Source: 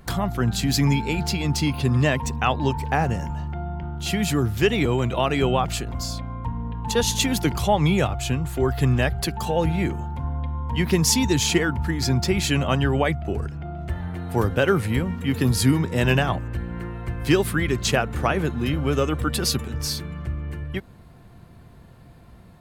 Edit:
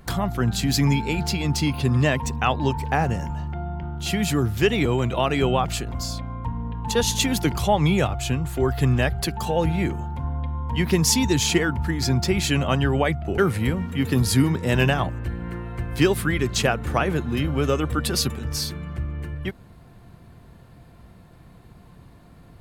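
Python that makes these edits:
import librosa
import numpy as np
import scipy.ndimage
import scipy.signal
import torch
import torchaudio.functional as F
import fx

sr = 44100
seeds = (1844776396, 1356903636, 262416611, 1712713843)

y = fx.edit(x, sr, fx.cut(start_s=13.38, length_s=1.29), tone=tone)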